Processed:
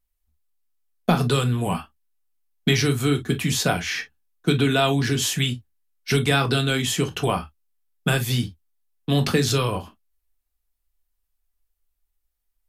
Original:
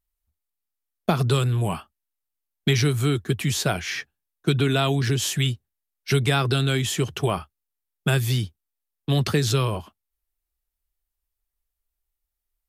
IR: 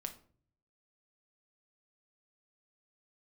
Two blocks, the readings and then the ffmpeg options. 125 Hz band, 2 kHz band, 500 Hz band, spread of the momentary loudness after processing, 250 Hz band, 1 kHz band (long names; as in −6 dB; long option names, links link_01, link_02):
−1.0 dB, +3.0 dB, +1.5 dB, 9 LU, +2.5 dB, +2.5 dB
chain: -filter_complex "[1:a]atrim=start_sample=2205,atrim=end_sample=3528,asetrate=57330,aresample=44100[link_01];[0:a][link_01]afir=irnorm=-1:irlink=0,volume=7dB"